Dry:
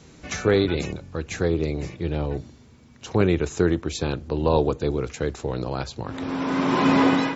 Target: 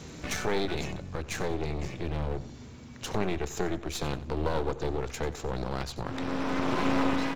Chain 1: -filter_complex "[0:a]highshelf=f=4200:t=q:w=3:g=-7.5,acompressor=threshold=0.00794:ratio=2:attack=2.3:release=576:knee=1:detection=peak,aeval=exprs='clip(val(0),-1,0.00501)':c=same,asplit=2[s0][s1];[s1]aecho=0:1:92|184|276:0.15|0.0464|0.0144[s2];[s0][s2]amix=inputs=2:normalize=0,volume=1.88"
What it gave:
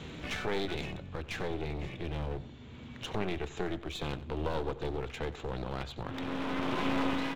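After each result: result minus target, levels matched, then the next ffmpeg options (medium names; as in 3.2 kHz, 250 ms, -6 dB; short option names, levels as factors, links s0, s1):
8 kHz band -8.0 dB; compression: peak gain reduction +5 dB
-filter_complex "[0:a]acompressor=threshold=0.00794:ratio=2:attack=2.3:release=576:knee=1:detection=peak,aeval=exprs='clip(val(0),-1,0.00501)':c=same,asplit=2[s0][s1];[s1]aecho=0:1:92|184|276:0.15|0.0464|0.0144[s2];[s0][s2]amix=inputs=2:normalize=0,volume=1.88"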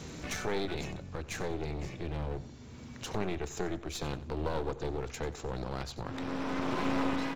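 compression: peak gain reduction +4.5 dB
-filter_complex "[0:a]acompressor=threshold=0.0237:ratio=2:attack=2.3:release=576:knee=1:detection=peak,aeval=exprs='clip(val(0),-1,0.00501)':c=same,asplit=2[s0][s1];[s1]aecho=0:1:92|184|276:0.15|0.0464|0.0144[s2];[s0][s2]amix=inputs=2:normalize=0,volume=1.88"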